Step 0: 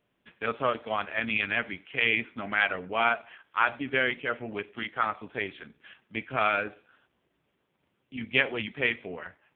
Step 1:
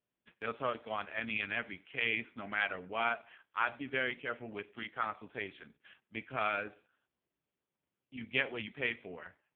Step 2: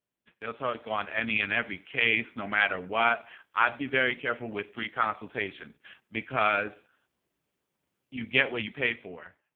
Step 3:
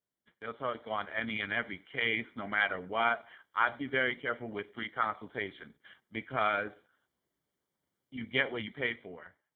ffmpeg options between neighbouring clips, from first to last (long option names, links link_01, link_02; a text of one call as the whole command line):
ffmpeg -i in.wav -af "agate=range=-8dB:threshold=-55dB:ratio=16:detection=peak,volume=-8dB" out.wav
ffmpeg -i in.wav -af "dynaudnorm=framelen=140:gausssize=11:maxgain=8.5dB" out.wav
ffmpeg -i in.wav -af "asuperstop=centerf=2600:order=4:qfactor=4.7,volume=-4dB" out.wav